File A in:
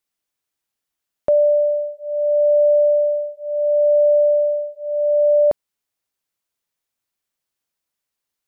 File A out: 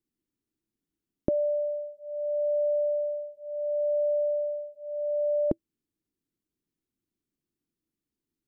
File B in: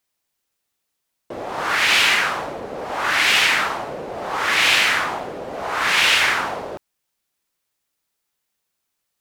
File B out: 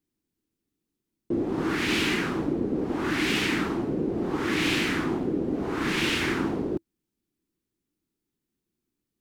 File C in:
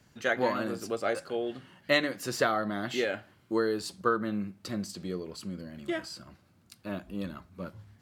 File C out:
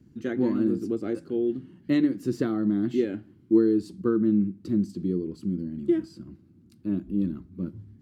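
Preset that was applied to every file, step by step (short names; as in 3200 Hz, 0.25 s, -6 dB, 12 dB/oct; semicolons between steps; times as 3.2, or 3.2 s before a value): EQ curve 110 Hz 0 dB, 330 Hz +7 dB, 590 Hz -18 dB; gain +6 dB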